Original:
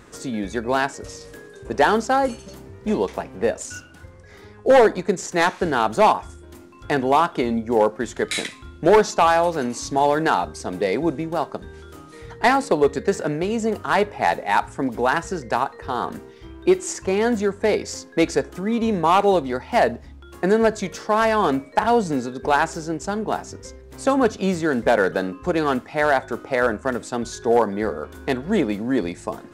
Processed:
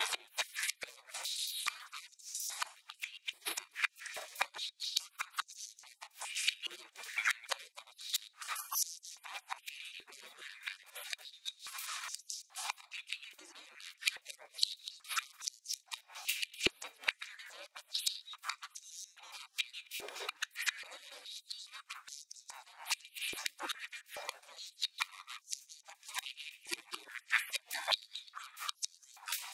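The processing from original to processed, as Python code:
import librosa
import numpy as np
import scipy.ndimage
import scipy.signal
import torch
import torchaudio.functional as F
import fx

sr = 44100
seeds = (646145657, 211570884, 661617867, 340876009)

y = fx.block_reorder(x, sr, ms=138.0, group=4)
y = fx.high_shelf(y, sr, hz=9500.0, db=3.0)
y = fx.spec_gate(y, sr, threshold_db=-30, keep='weak')
y = fx.gate_flip(y, sr, shuts_db=-36.0, range_db=-28)
y = fx.small_body(y, sr, hz=(2400.0, 3800.0), ring_ms=45, db=9)
y = fx.filter_held_highpass(y, sr, hz=2.4, low_hz=370.0, high_hz=5900.0)
y = y * librosa.db_to_amplitude(14.5)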